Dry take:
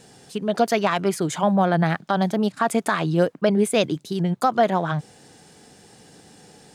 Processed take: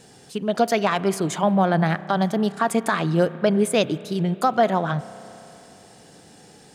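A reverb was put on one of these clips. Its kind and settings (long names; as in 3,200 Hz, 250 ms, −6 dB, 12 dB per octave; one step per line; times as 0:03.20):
spring reverb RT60 3.4 s, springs 31 ms, chirp 60 ms, DRR 15.5 dB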